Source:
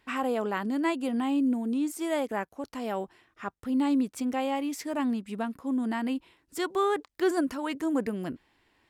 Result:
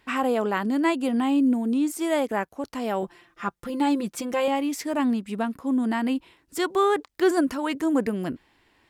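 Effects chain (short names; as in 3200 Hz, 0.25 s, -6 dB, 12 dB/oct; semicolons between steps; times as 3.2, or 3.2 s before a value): 3.02–4.48 comb 5.8 ms, depth 72%; gain +5 dB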